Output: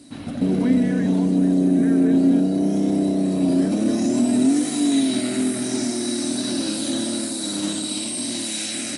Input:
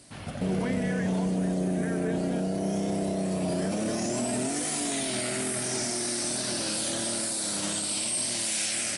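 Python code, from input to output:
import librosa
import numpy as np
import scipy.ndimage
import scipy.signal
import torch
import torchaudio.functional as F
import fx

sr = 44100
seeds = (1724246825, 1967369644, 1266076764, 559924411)

y = fx.small_body(x, sr, hz=(270.0, 3900.0), ring_ms=50, db=18)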